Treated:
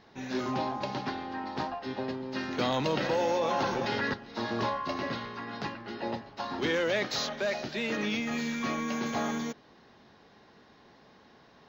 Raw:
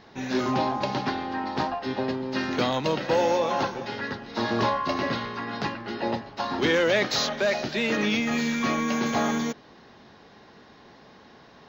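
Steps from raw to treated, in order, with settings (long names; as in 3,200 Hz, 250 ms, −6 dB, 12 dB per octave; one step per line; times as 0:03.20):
0:02.59–0:04.14: envelope flattener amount 70%
level −6.5 dB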